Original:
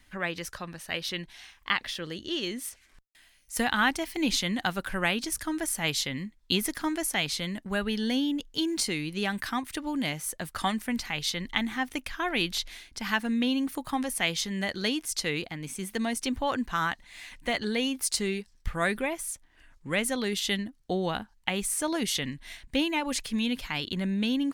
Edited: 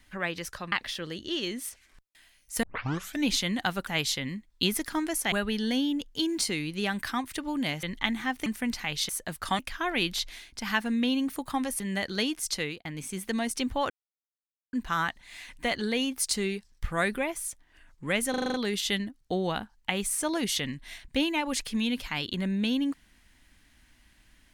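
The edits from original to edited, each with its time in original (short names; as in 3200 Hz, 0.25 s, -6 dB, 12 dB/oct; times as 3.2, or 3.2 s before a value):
0.72–1.72 cut
3.63 tape start 0.63 s
4.87–5.76 cut
7.21–7.71 cut
10.22–10.72 swap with 11.35–11.98
14.19–14.46 cut
15.14–15.51 fade out equal-power
16.56 insert silence 0.83 s
20.13 stutter 0.04 s, 7 plays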